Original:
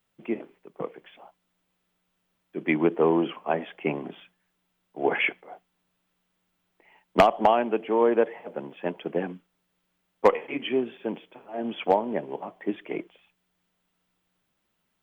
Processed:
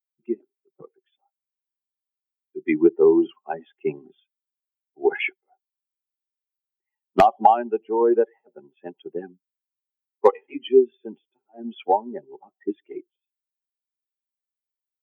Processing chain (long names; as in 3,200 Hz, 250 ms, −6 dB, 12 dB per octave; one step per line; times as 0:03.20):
spectral dynamics exaggerated over time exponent 2
hollow resonant body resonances 380/790 Hz, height 14 dB, ringing for 45 ms
level +1 dB